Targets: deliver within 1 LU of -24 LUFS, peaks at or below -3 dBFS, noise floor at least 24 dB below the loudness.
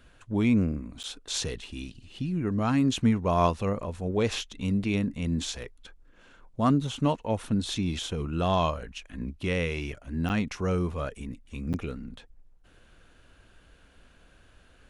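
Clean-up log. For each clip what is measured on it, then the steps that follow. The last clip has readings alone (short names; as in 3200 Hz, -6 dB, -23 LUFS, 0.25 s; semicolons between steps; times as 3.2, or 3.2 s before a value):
dropouts 3; longest dropout 8.6 ms; loudness -29.0 LUFS; peak -10.0 dBFS; loudness target -24.0 LUFS
-> interpolate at 1.03/10.29/11.73, 8.6 ms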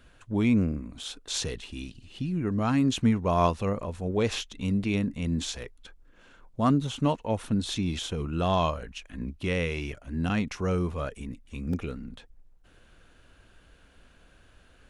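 dropouts 0; loudness -29.0 LUFS; peak -10.0 dBFS; loudness target -24.0 LUFS
-> gain +5 dB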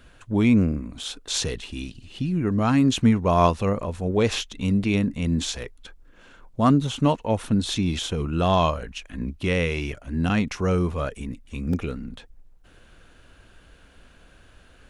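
loudness -24.0 LUFS; peak -5.0 dBFS; noise floor -53 dBFS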